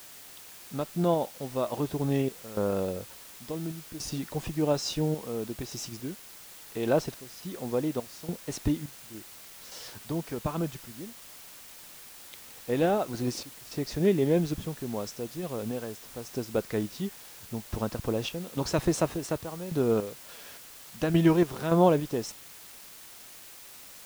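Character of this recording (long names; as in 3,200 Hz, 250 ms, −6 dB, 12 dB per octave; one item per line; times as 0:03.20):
sample-and-hold tremolo, depth 90%
a quantiser's noise floor 8 bits, dither triangular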